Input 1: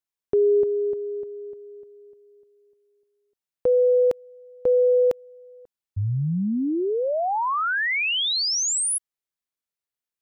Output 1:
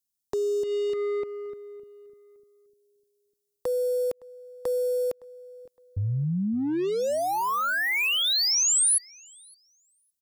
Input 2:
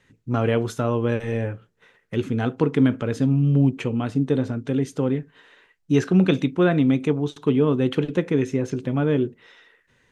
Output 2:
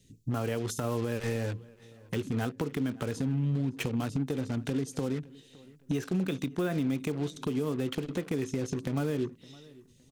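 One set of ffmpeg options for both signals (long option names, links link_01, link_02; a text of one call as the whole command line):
ffmpeg -i in.wav -filter_complex "[0:a]acrossover=split=400|3500[link_01][link_02][link_03];[link_02]acrusher=bits=5:mix=0:aa=0.5[link_04];[link_01][link_04][link_03]amix=inputs=3:normalize=0,acompressor=threshold=-27dB:ratio=16:attack=0.38:release=211:knee=6:detection=rms,highshelf=frequency=5500:gain=6.5,asplit=2[link_05][link_06];[link_06]adelay=563,lowpass=frequency=3800:poles=1,volume=-22dB,asplit=2[link_07][link_08];[link_08]adelay=563,lowpass=frequency=3800:poles=1,volume=0.33[link_09];[link_05][link_07][link_09]amix=inputs=3:normalize=0,volume=3.5dB" out.wav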